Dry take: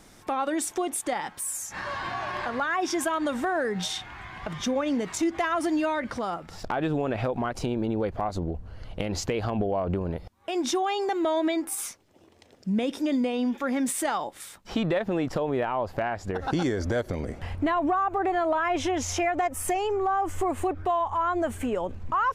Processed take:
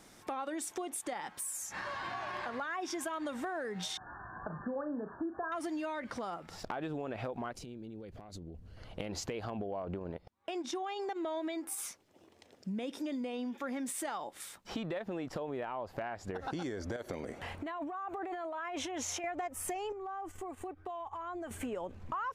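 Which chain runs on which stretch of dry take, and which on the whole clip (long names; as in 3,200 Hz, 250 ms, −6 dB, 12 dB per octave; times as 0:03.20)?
0:03.97–0:05.52: linear-phase brick-wall low-pass 1,800 Hz + flutter between parallel walls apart 6.3 metres, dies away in 0.21 s
0:07.55–0:08.77: downward compressor 12 to 1, threshold −33 dBFS + parametric band 950 Hz −12.5 dB 1.9 octaves
0:09.82–0:11.41: high-shelf EQ 9,900 Hz −10.5 dB + transient designer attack 0 dB, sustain −10 dB
0:16.96–0:19.24: low-shelf EQ 160 Hz −11 dB + notch filter 5,000 Hz + compressor whose output falls as the input rises −31 dBFS
0:19.92–0:21.51: noise gate −32 dBFS, range −12 dB + comb filter 2.6 ms, depth 37% + downward compressor 5 to 1, threshold −34 dBFS
whole clip: low-shelf EQ 92 Hz −10 dB; downward compressor 3 to 1, threshold −33 dBFS; level −4 dB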